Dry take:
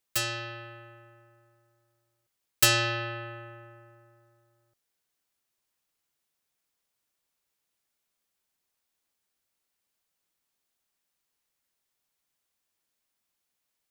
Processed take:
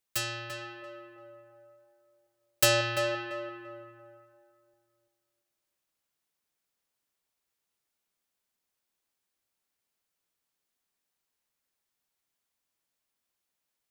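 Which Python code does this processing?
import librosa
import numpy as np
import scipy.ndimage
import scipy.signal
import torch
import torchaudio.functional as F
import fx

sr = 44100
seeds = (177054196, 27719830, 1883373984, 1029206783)

y = fx.peak_eq(x, sr, hz=580.0, db=10.0, octaves=0.69, at=(0.82, 2.81))
y = fx.echo_tape(y, sr, ms=341, feedback_pct=34, wet_db=-3, lp_hz=1700.0, drive_db=8.0, wow_cents=8)
y = F.gain(torch.from_numpy(y), -3.0).numpy()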